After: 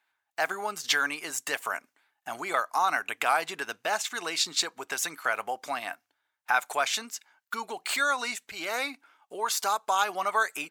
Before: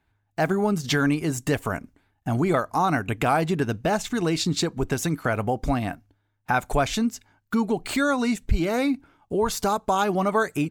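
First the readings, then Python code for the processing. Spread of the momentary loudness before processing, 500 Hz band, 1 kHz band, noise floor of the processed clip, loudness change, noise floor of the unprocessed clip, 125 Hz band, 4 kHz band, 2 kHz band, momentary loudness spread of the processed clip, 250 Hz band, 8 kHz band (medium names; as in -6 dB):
6 LU, -10.0 dB, -2.5 dB, -82 dBFS, -4.5 dB, -72 dBFS, -31.0 dB, +1.5 dB, +1.0 dB, 11 LU, -21.5 dB, +1.5 dB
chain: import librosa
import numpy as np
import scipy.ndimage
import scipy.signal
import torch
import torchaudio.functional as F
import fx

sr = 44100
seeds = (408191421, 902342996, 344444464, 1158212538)

y = scipy.signal.sosfilt(scipy.signal.butter(2, 1000.0, 'highpass', fs=sr, output='sos'), x)
y = y * 10.0 ** (1.5 / 20.0)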